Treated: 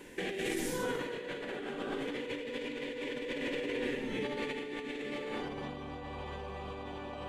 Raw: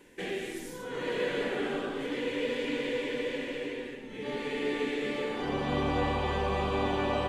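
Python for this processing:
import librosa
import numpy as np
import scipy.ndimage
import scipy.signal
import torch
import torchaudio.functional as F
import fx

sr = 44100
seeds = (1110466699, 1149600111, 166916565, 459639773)

y = fx.over_compress(x, sr, threshold_db=-39.0, ratio=-1.0)
y = y + 10.0 ** (-15.5 / 20.0) * np.pad(y, (int(232 * sr / 1000.0), 0))[:len(y)]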